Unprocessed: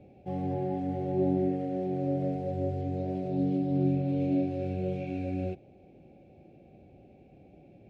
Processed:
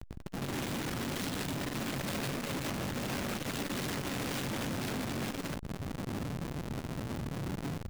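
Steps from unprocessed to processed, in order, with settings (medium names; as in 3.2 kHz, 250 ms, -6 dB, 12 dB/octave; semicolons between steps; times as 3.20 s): octave divider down 1 oct, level -1 dB; dynamic bell 120 Hz, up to -5 dB, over -43 dBFS, Q 1.7; level rider gain up to 10.5 dB; low-pass 1.3 kHz 12 dB/octave; compression 1.5:1, threshold -37 dBFS, peak gain reduction 9 dB; integer overflow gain 32 dB; graphic EQ 125/250/1000 Hz +11/+11/-4 dB; Schmitt trigger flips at -37.5 dBFS; on a send at -15 dB: reverberation RT60 0.55 s, pre-delay 4 ms; on the sum: buffer glitch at 1.65 s, samples 2048, times 1; transformer saturation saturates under 170 Hz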